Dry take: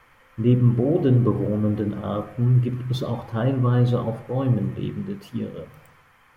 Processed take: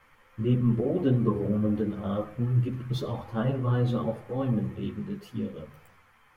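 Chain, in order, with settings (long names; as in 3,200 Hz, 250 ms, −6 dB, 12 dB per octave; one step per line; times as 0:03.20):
string-ensemble chorus
level −1.5 dB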